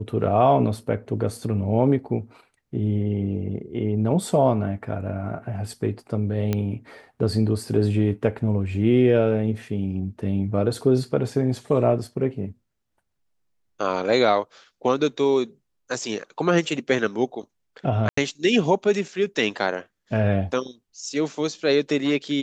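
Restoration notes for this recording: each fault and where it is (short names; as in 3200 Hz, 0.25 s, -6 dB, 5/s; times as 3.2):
6.53 pop -11 dBFS
18.09–18.17 gap 84 ms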